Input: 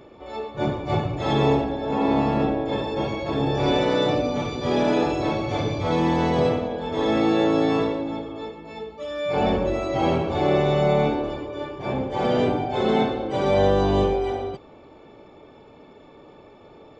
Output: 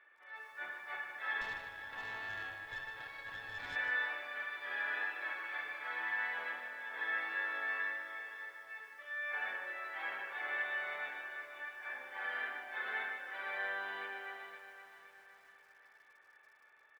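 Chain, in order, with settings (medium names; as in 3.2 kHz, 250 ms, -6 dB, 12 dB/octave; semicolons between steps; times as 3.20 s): ladder band-pass 1.8 kHz, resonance 80%; distance through air 280 m; feedback delay 517 ms, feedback 47%, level -11.5 dB; 1.41–3.76 s: valve stage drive 38 dB, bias 0.7; bit-crushed delay 153 ms, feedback 35%, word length 11-bit, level -8 dB; trim +2.5 dB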